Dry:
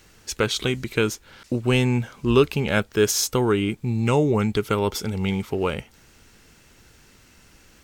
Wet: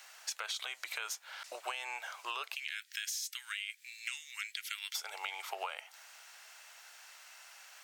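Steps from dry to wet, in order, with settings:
elliptic high-pass filter 660 Hz, stop band 70 dB, from 0:02.54 1,800 Hz, from 0:04.94 670 Hz
brickwall limiter −19.5 dBFS, peak gain reduction 11 dB
downward compressor 10 to 1, threshold −37 dBFS, peak gain reduction 11.5 dB
level +1.5 dB

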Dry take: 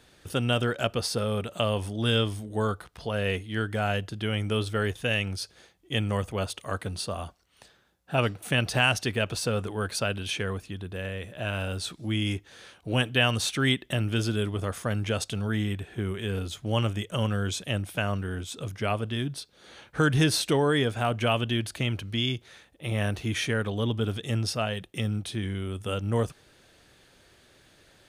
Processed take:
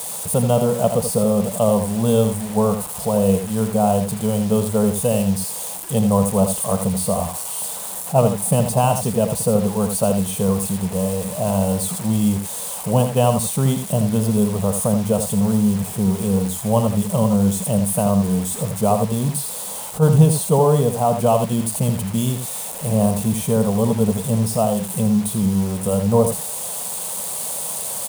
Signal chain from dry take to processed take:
spike at every zero crossing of −18 dBFS
drawn EQ curve 110 Hz 0 dB, 190 Hz +14 dB, 320 Hz −11 dB, 460 Hz +6 dB, 1,000 Hz +6 dB, 1,700 Hz −24 dB, 2,900 Hz −15 dB, 5,600 Hz −16 dB, 9,000 Hz −2 dB, 14,000 Hz −12 dB
in parallel at +1 dB: speech leveller within 4 dB 2 s
on the sum: bit-depth reduction 6 bits, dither none
on a send: single-tap delay 81 ms −8 dB
on the sum: level that may rise only so fast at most 340 dB per second
level −1 dB

